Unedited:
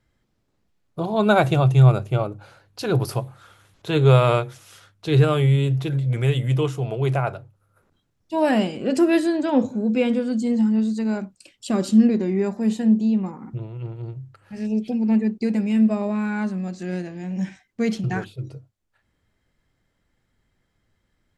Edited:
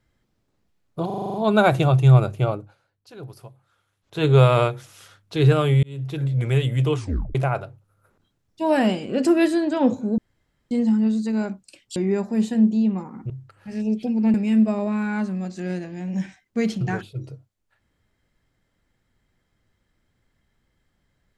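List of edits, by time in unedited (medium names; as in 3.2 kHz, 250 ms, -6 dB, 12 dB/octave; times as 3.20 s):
1.06 s: stutter 0.04 s, 8 plays
2.26–3.96 s: dip -17.5 dB, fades 0.22 s
5.55–6.01 s: fade in
6.68 s: tape stop 0.39 s
9.90–10.43 s: room tone
11.68–12.24 s: delete
13.58–14.15 s: delete
15.19–15.57 s: delete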